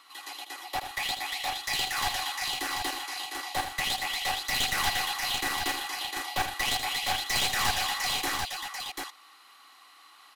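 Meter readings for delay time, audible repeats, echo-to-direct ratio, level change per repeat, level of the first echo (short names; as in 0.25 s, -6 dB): 79 ms, 3, -3.0 dB, no steady repeat, -8.5 dB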